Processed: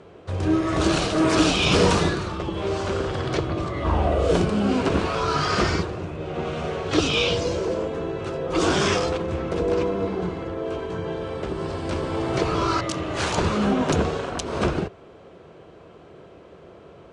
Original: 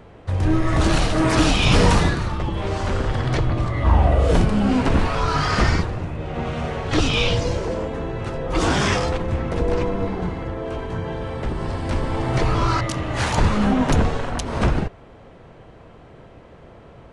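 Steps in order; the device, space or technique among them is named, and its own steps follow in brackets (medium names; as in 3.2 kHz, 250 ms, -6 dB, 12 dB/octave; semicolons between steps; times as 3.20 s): car door speaker (cabinet simulation 100–9200 Hz, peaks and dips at 120 Hz -9 dB, 240 Hz -6 dB, 380 Hz +5 dB, 860 Hz -5 dB, 1.9 kHz -6 dB)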